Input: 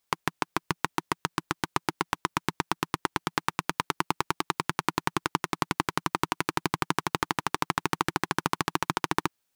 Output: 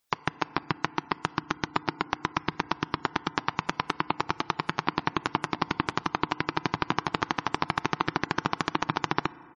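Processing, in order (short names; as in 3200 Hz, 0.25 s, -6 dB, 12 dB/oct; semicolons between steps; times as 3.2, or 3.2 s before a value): FDN reverb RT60 2.5 s, low-frequency decay 1×, high-frequency decay 0.55×, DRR 18 dB; dynamic EQ 7800 Hz, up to -4 dB, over -56 dBFS, Q 2.6; harmoniser -4 st -12 dB; spectral gate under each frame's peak -25 dB strong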